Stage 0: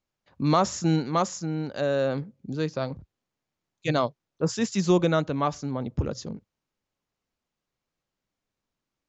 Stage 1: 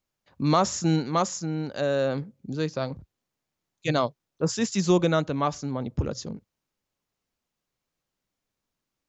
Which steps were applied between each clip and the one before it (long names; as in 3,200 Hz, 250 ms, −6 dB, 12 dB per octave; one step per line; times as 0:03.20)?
high-shelf EQ 5,600 Hz +5 dB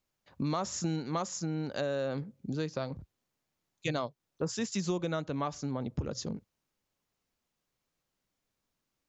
downward compressor 4 to 1, threshold −31 dBFS, peak gain reduction 13 dB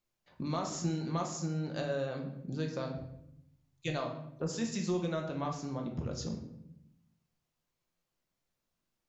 rectangular room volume 210 cubic metres, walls mixed, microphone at 0.86 metres
level −4.5 dB